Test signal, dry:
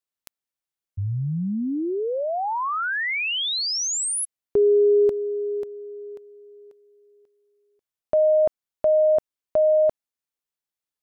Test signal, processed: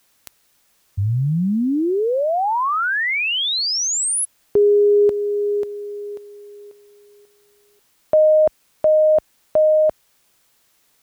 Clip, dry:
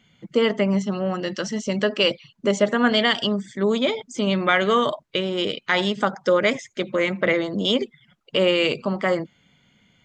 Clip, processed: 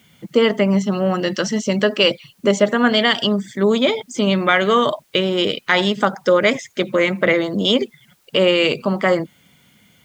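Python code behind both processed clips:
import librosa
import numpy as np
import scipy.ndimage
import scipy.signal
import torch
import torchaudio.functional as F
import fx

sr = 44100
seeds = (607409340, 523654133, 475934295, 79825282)

p1 = scipy.signal.sosfilt(scipy.signal.butter(2, 42.0, 'highpass', fs=sr, output='sos'), x)
p2 = fx.rider(p1, sr, range_db=4, speed_s=0.5)
p3 = p1 + (p2 * librosa.db_to_amplitude(-1.0))
p4 = fx.quant_dither(p3, sr, seeds[0], bits=10, dither='triangular')
y = p4 * librosa.db_to_amplitude(-1.0)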